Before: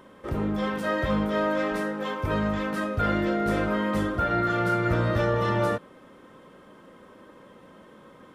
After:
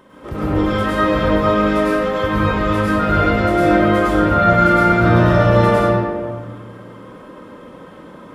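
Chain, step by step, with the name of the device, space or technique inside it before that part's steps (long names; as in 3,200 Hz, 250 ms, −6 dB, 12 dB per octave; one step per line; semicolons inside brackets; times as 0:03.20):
stairwell (convolution reverb RT60 1.7 s, pre-delay 95 ms, DRR −8.5 dB)
level +2 dB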